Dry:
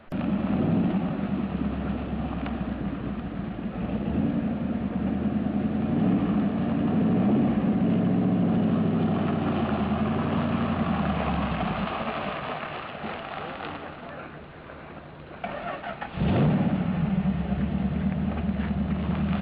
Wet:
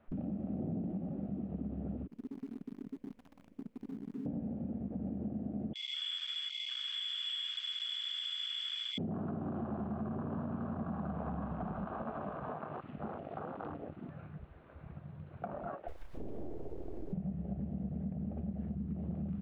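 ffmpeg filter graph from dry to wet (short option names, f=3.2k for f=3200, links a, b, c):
-filter_complex "[0:a]asettb=1/sr,asplit=3[a][b][c];[a]atrim=end=2.074[d];[b]atrim=start=2.07:end=4.26,asetpts=PTS-STARTPTS,afade=t=in:d=0.004:c=qsin,afade=t=out:st=2.186:d=0.004:c=qsin,asplit=3[e][f][g];[e]bandpass=f=270:t=q:w=8,volume=0dB[h];[f]bandpass=f=2.29k:t=q:w=8,volume=-6dB[i];[g]bandpass=f=3.01k:t=q:w=8,volume=-9dB[j];[h][i][j]amix=inputs=3:normalize=0,acrusher=bits=7:dc=4:mix=0:aa=0.000001,adynamicequalizer=threshold=0.00355:dfrequency=340:dqfactor=1.3:tfrequency=340:tqfactor=1.3:attack=5:release=100:ratio=0.375:range=3.5:mode=cutabove:tftype=bell[k];[c]atrim=start=4.256[l];[d][k]acrossfade=d=0.004:c1=hsin:c2=qsin[m];[m][l]acrossfade=d=0.004:c1=qsin:c2=hsin,asettb=1/sr,asplit=3[n][o][p];[n]atrim=end=5.734[q];[o]atrim=start=5.73:end=8.98,asetpts=PTS-STARTPTS,afade=t=in:d=0.004:c=qsin,afade=t=out:st=3.246:d=0.004:c=qsin,lowpass=f=3.1k:t=q:w=0.5098,lowpass=f=3.1k:t=q:w=0.6013,lowpass=f=3.1k:t=q:w=0.9,lowpass=f=3.1k:t=q:w=2.563,afreqshift=-3600,asubboost=boost=10.5:cutoff=140[r];[p]atrim=start=8.976[s];[q][r]acrossfade=d=0.004:c1=hsin:c2=qsin[t];[t][s]acrossfade=d=0.004:c1=qsin:c2=hsin,asettb=1/sr,asplit=3[u][v][w];[u]atrim=end=15.884[x];[v]atrim=start=15.88:end=17.13,asetpts=PTS-STARTPTS,afade=t=in:d=0.004:c=qsin,afade=t=out:st=1.246:d=0.004:c=qsin,acompressor=threshold=-27dB:ratio=2.5:attack=3.2:release=140:knee=1:detection=peak,aeval=exprs='abs(val(0))':c=same,acrusher=bits=4:dc=4:mix=0:aa=0.000001[y];[w]atrim=start=17.126[z];[x][y]acrossfade=d=0.004:c1=hsin:c2=qsin[aa];[aa][z]acrossfade=d=0.004:c1=qsin:c2=hsin,afwtdn=0.0355,highshelf=f=2.2k:g=-10.5,acompressor=threshold=-42dB:ratio=3,volume=1.5dB"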